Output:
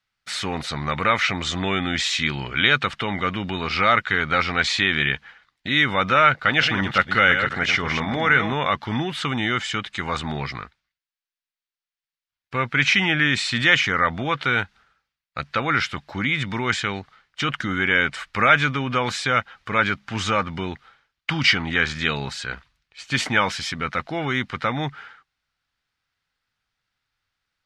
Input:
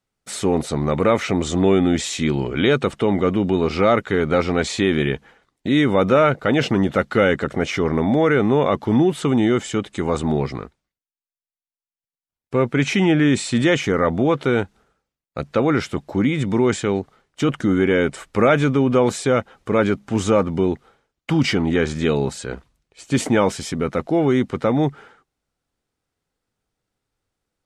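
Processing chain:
0:06.30–0:08.53: delay that plays each chunk backwards 170 ms, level −7 dB
drawn EQ curve 120 Hz 0 dB, 410 Hz −9 dB, 1,600 Hz +12 dB, 4,700 Hz +10 dB, 8,200 Hz −3 dB
level −4.5 dB

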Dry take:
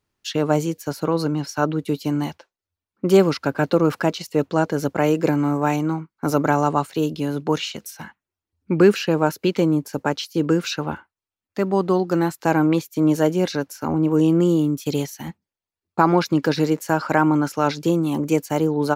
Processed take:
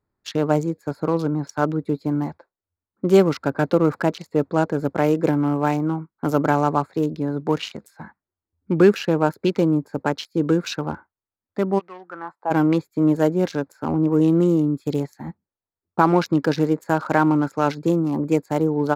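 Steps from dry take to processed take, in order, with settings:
adaptive Wiener filter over 15 samples
0:11.78–0:12.50: resonant band-pass 2,700 Hz → 740 Hz, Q 2.7

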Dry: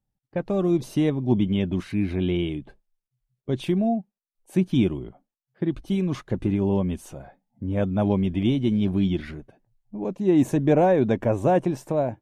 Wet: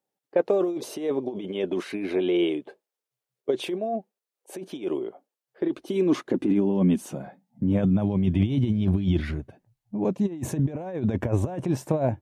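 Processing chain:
compressor whose output falls as the input rises −24 dBFS, ratio −0.5
high-pass filter sweep 430 Hz → 76 Hz, 0:05.55–0:08.95

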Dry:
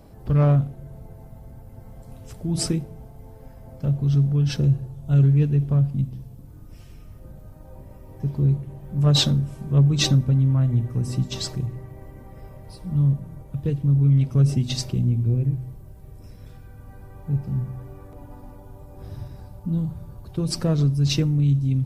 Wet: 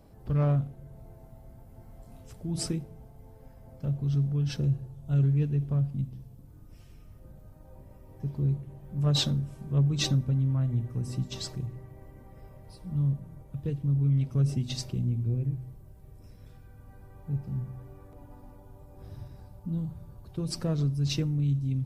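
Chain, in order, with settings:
0:00.96–0:02.23: double-tracking delay 26 ms −3.5 dB
level −7.5 dB

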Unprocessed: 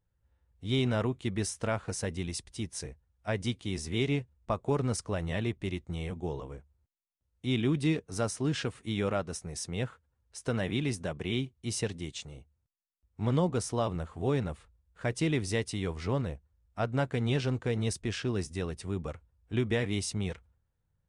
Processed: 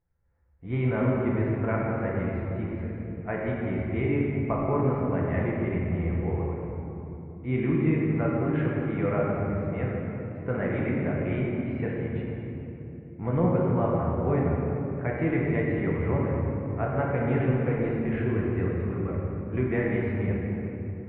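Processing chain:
elliptic low-pass filter 2,200 Hz, stop band 70 dB
rectangular room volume 170 cubic metres, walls hard, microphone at 0.72 metres

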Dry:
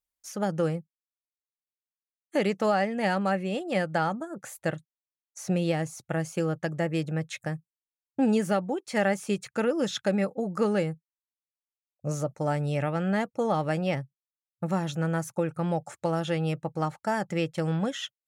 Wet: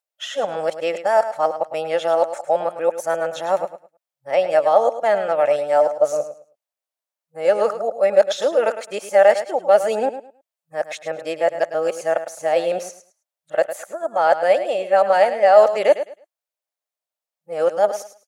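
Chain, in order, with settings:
played backwards from end to start
high-pass with resonance 610 Hz, resonance Q 3.9
repeating echo 106 ms, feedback 22%, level −11.5 dB
level +4.5 dB

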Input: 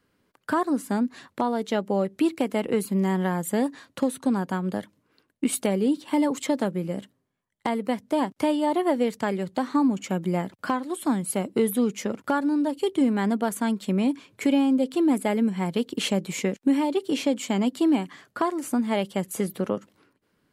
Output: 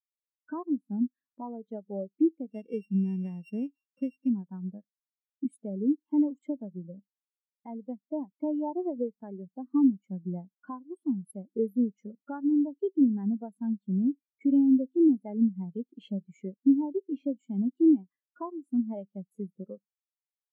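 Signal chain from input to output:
0:02.47–0:04.29: samples sorted by size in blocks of 16 samples
downward compressor 1.5 to 1, threshold −29 dBFS, peak gain reduction 4.5 dB
every bin expanded away from the loudest bin 2.5 to 1

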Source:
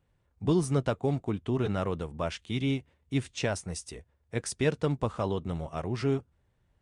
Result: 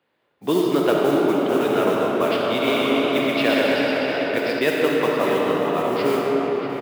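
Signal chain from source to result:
high-shelf EQ 3,600 Hz +10.5 dB
downsampling to 11,025 Hz
three-way crossover with the lows and the highs turned down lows −16 dB, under 240 Hz, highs −14 dB, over 3,800 Hz
noise that follows the level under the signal 21 dB
high-pass filter 170 Hz 12 dB per octave
slap from a distant wall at 110 metres, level −6 dB
convolution reverb RT60 5.5 s, pre-delay 10 ms, DRR −3.5 dB
0:02.54–0:04.59: feedback echo with a swinging delay time 125 ms, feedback 62%, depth 61 cents, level −3 dB
level +7.5 dB

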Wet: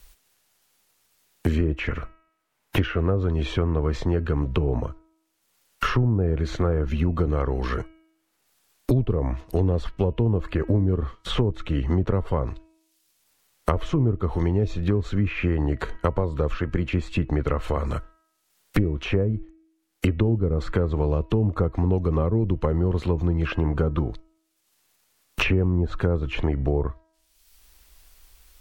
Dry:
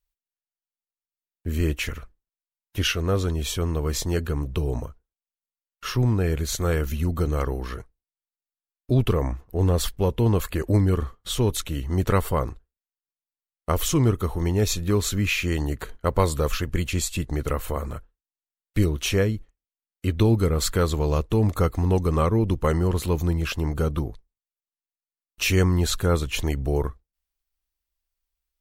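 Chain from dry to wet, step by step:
treble cut that deepens with the level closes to 670 Hz, closed at −17 dBFS
hum removal 321.5 Hz, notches 9
multiband upward and downward compressor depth 100%

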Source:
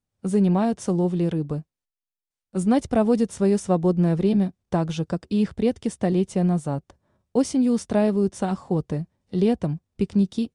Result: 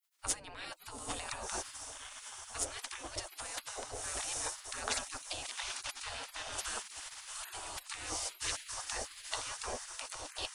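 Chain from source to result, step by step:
compressor whose output falls as the input rises −28 dBFS, ratio −1
feedback delay with all-pass diffusion 836 ms, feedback 52%, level −11.5 dB
gate on every frequency bin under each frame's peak −30 dB weak
level +8.5 dB

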